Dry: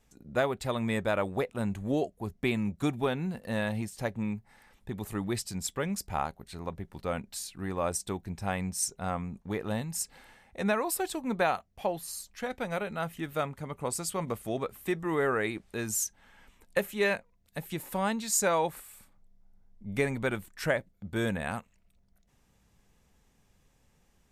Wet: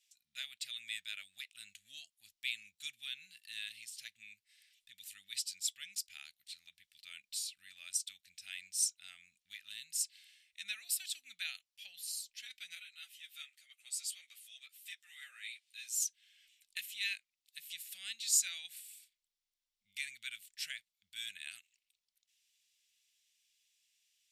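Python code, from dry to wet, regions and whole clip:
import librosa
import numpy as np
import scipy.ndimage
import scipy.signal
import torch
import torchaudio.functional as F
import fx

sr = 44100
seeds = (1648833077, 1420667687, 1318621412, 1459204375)

y = fx.chain(x, sr, fx.highpass(hz=420.0, slope=24),
    fx.ensemble(), at=(12.75, 16.02))
y = scipy.signal.sosfilt(scipy.signal.cheby2(4, 50, 1100.0, 'highpass', fs=sr, output='sos'), y)
y = fx.high_shelf(y, sr, hz=7000.0, db=-10.0)
y = fx.notch(y, sr, hz=6400.0, q=23.0)
y = y * 10.0 ** (4.5 / 20.0)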